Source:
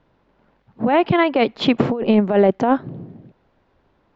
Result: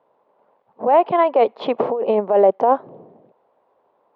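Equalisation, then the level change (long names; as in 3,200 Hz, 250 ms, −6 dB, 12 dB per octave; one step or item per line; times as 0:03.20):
band-pass filter 230–3,900 Hz
flat-topped bell 690 Hz +13 dB
−9.0 dB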